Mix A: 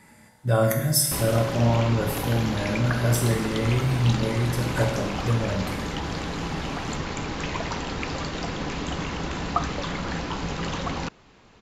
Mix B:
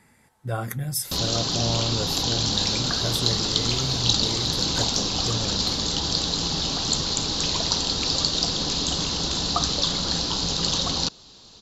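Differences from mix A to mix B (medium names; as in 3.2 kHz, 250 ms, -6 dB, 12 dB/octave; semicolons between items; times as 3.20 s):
background: add resonant high shelf 3 kHz +11.5 dB, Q 3; reverb: off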